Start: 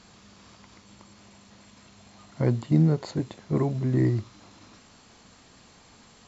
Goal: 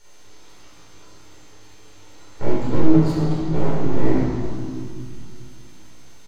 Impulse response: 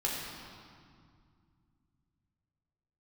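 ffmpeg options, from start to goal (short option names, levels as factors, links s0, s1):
-filter_complex "[0:a]highpass=f=78:w=0.5412,highpass=f=78:w=1.3066,aeval=exprs='(tanh(7.08*val(0)+0.6)-tanh(0.6))/7.08':c=same,aecho=1:1:30|69|119.7|185.6|271.3:0.631|0.398|0.251|0.158|0.1,aeval=exprs='abs(val(0))':c=same,aeval=exprs='val(0)+0.00141*sin(2*PI*6300*n/s)':c=same,asplit=2[s0][s1];[s1]adelay=19,volume=0.398[s2];[s0][s2]amix=inputs=2:normalize=0[s3];[1:a]atrim=start_sample=2205,asetrate=48510,aresample=44100[s4];[s3][s4]afir=irnorm=-1:irlink=0"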